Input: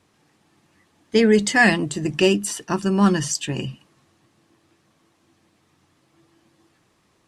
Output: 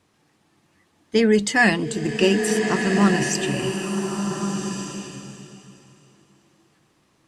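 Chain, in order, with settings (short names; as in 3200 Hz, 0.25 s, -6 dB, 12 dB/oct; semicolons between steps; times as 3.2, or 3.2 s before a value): bloom reverb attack 1.46 s, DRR 4 dB; gain -1.5 dB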